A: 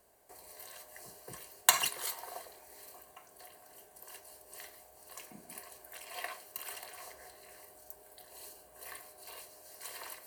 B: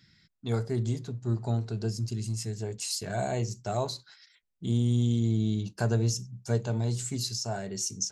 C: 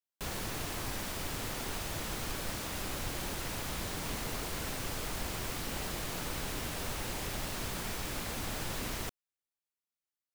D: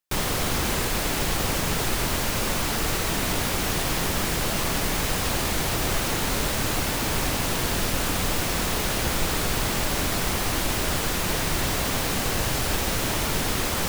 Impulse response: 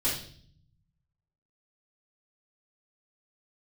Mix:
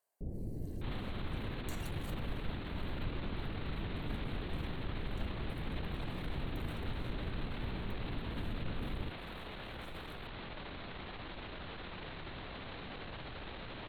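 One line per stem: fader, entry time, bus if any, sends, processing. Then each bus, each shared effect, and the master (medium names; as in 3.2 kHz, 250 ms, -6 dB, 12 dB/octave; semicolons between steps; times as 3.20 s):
-17.0 dB, 0.00 s, bus A, no send, high-pass 630 Hz
mute
+2.0 dB, 0.00 s, no bus, no send, Gaussian low-pass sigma 21 samples
-15.0 dB, 0.70 s, bus A, no send, steep low-pass 4.1 kHz 96 dB/octave
bus A: 0.0 dB, transient shaper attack -9 dB, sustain +9 dB; compression, threshold -42 dBFS, peak gain reduction 7 dB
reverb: none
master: none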